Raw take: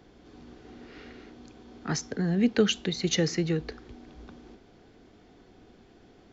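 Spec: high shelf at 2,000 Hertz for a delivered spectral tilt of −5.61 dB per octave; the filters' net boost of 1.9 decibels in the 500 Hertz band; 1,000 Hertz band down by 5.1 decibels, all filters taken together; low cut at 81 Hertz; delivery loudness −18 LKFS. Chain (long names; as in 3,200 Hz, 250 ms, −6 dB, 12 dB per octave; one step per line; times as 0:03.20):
high-pass filter 81 Hz
parametric band 500 Hz +4 dB
parametric band 1,000 Hz −8.5 dB
high-shelf EQ 2,000 Hz −4 dB
level +9.5 dB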